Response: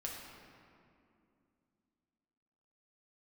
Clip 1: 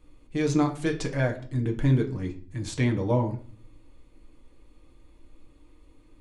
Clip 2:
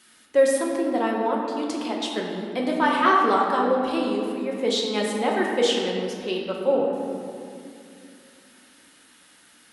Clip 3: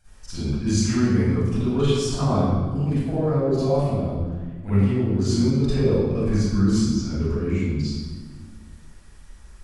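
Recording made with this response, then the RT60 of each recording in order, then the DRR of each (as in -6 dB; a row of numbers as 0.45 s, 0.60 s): 2; 0.45 s, 2.5 s, 1.4 s; 1.0 dB, -2.5 dB, -14.0 dB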